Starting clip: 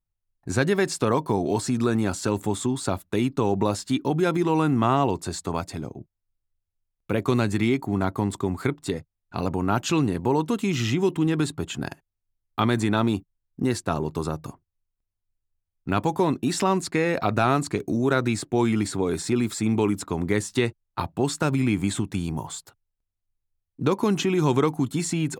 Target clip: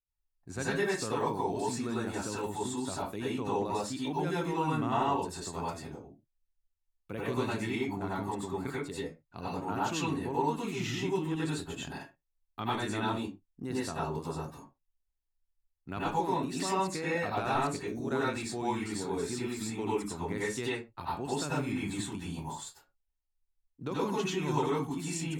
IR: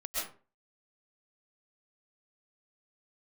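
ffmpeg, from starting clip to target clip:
-filter_complex "[1:a]atrim=start_sample=2205,afade=t=out:st=0.37:d=0.01,atrim=end_sample=16758,asetrate=61740,aresample=44100[a];[0:a][a]afir=irnorm=-1:irlink=0,volume=-7.5dB"

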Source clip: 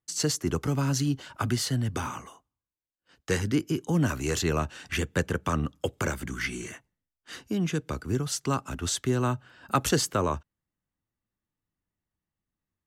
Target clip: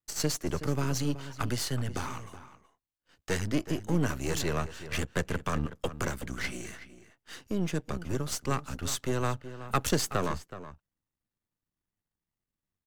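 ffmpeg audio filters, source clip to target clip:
-filter_complex "[0:a]aeval=exprs='if(lt(val(0),0),0.251*val(0),val(0))':c=same,asplit=2[a][b];[b]adelay=373.2,volume=-13dB,highshelf=f=4k:g=-8.4[c];[a][c]amix=inputs=2:normalize=0"

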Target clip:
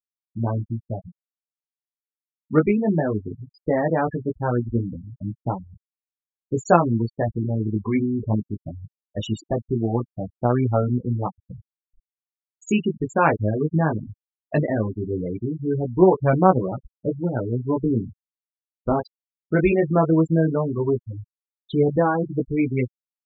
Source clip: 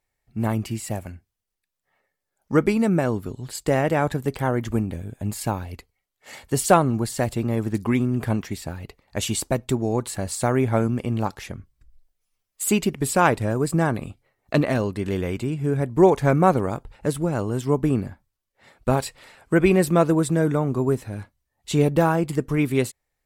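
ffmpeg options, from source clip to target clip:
-af "aresample=16000,aresample=44100,flanger=delay=16:depth=3.3:speed=0.18,afftfilt=real='re*gte(hypot(re,im),0.0708)':imag='im*gte(hypot(re,im),0.0708)':win_size=1024:overlap=0.75,volume=3dB"

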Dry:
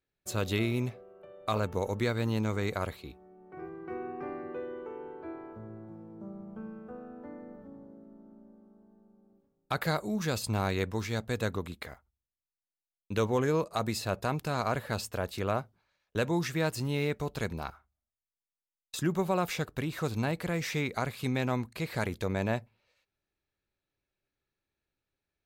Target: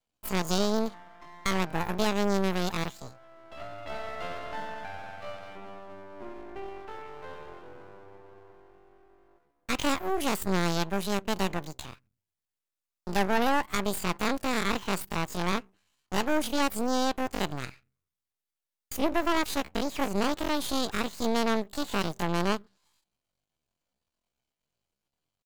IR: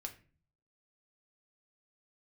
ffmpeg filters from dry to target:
-af "asetrate=78577,aresample=44100,atempo=0.561231,aeval=exprs='max(val(0),0)':c=same,volume=6dB"

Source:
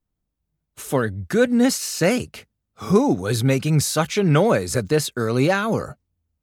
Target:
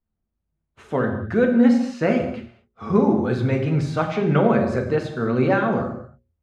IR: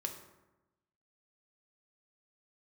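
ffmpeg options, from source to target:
-filter_complex "[0:a]lowpass=2.1k,bandreject=f=60:t=h:w=6,bandreject=f=120:t=h:w=6,bandreject=f=180:t=h:w=6,bandreject=f=240:t=h:w=6,bandreject=f=300:t=h:w=6,bandreject=f=360:t=h:w=6,bandreject=f=420:t=h:w=6,bandreject=f=480:t=h:w=6,bandreject=f=540:t=h:w=6[a];[1:a]atrim=start_sample=2205,afade=t=out:st=0.2:d=0.01,atrim=end_sample=9261,asetrate=27342,aresample=44100[b];[a][b]afir=irnorm=-1:irlink=0,volume=-2.5dB"

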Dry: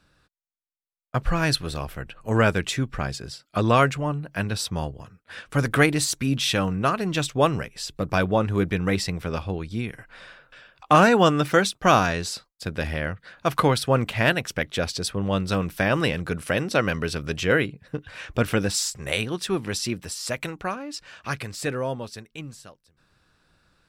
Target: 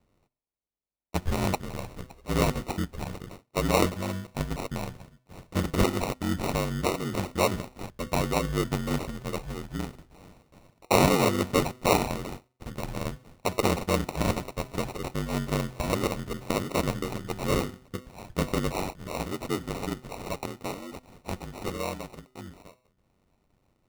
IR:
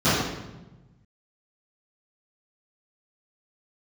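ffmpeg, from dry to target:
-af "aeval=exprs='val(0)*sin(2*PI*47*n/s)':c=same,bandreject=f=127.3:t=h:w=4,bandreject=f=254.6:t=h:w=4,bandreject=f=381.9:t=h:w=4,bandreject=f=509.2:t=h:w=4,bandreject=f=636.5:t=h:w=4,bandreject=f=763.8:t=h:w=4,bandreject=f=891.1:t=h:w=4,bandreject=f=1.0184k:t=h:w=4,bandreject=f=1.1457k:t=h:w=4,bandreject=f=1.273k:t=h:w=4,bandreject=f=1.4003k:t=h:w=4,bandreject=f=1.5276k:t=h:w=4,bandreject=f=1.6549k:t=h:w=4,bandreject=f=1.7822k:t=h:w=4,bandreject=f=1.9095k:t=h:w=4,bandreject=f=2.0368k:t=h:w=4,bandreject=f=2.1641k:t=h:w=4,bandreject=f=2.2914k:t=h:w=4,bandreject=f=2.4187k:t=h:w=4,bandreject=f=2.546k:t=h:w=4,bandreject=f=2.6733k:t=h:w=4,bandreject=f=2.8006k:t=h:w=4,bandreject=f=2.9279k:t=h:w=4,bandreject=f=3.0552k:t=h:w=4,bandreject=f=3.1825k:t=h:w=4,acrusher=samples=27:mix=1:aa=0.000001,volume=-2dB"

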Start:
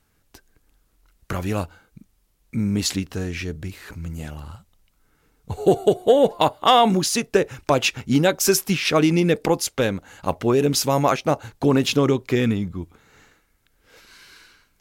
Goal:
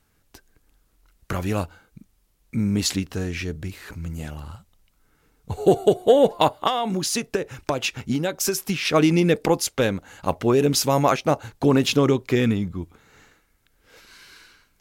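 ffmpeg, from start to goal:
-filter_complex "[0:a]asettb=1/sr,asplit=3[a][b][c];[a]atrim=end=6.674[d];[b]atrim=start=6.67:end=8.94,asetpts=PTS-STARTPTS,afade=t=in:d=0.004:c=qsin,afade=t=out:st=2.266:d=0.004:c=qsin,acompressor=threshold=-20dB:ratio=10[e];[c]atrim=start=8.936[f];[d][e]acrossfade=d=0.004:c1=hsin:c2=qsin[g];[g][f]acrossfade=d=0.004:c1=qsin:c2=hsin"

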